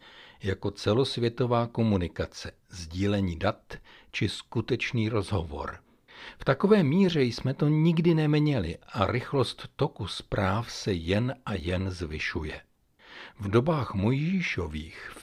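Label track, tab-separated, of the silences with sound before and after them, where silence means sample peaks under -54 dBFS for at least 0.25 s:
12.640000	12.990000	silence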